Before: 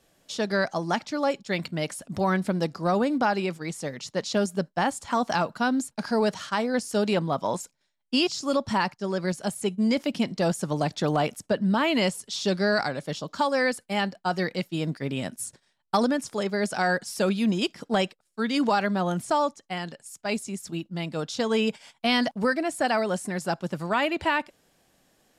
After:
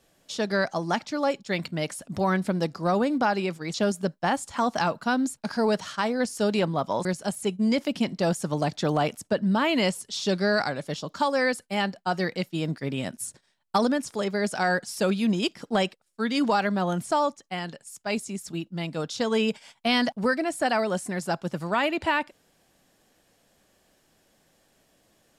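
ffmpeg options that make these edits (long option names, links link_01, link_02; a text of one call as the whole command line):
ffmpeg -i in.wav -filter_complex "[0:a]asplit=3[link_01][link_02][link_03];[link_01]atrim=end=3.742[link_04];[link_02]atrim=start=4.278:end=7.592[link_05];[link_03]atrim=start=9.238[link_06];[link_04][link_05]acrossfade=duration=0.004:curve1=hsin:curve2=hsin[link_07];[link_07][link_06]acrossfade=duration=0.004:curve1=hsin:curve2=hsin" out.wav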